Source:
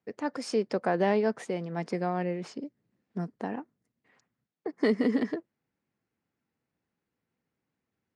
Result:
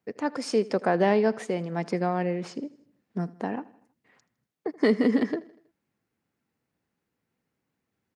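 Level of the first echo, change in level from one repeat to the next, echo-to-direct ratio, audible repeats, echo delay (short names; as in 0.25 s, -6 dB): -20.5 dB, -6.0 dB, -19.0 dB, 3, 80 ms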